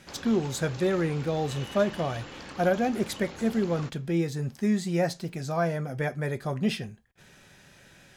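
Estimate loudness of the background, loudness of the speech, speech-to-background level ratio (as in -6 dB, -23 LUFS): -42.5 LUFS, -28.5 LUFS, 14.0 dB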